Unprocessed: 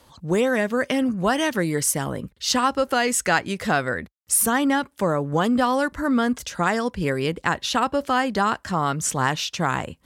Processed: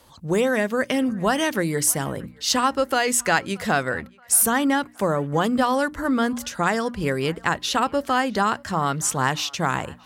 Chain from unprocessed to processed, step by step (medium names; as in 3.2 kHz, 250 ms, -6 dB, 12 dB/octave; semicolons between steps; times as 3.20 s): treble shelf 11 kHz +5.5 dB; hum notches 60/120/180/240/300 Hz; band-passed feedback delay 627 ms, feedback 48%, band-pass 1.3 kHz, level -22.5 dB